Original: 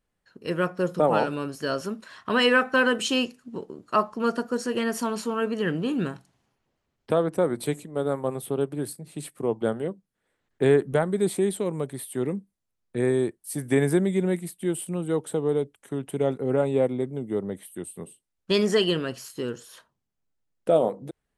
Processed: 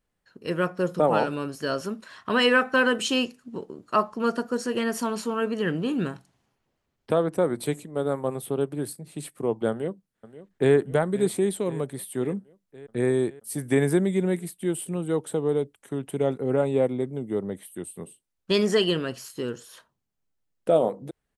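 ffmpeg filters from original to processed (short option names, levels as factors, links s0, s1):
-filter_complex "[0:a]asplit=2[s0][s1];[s1]afade=t=in:st=9.7:d=0.01,afade=t=out:st=10.74:d=0.01,aecho=0:1:530|1060|1590|2120|2650|3180|3710|4240:0.16788|0.117516|0.0822614|0.057583|0.0403081|0.0282157|0.019751|0.0138257[s2];[s0][s2]amix=inputs=2:normalize=0"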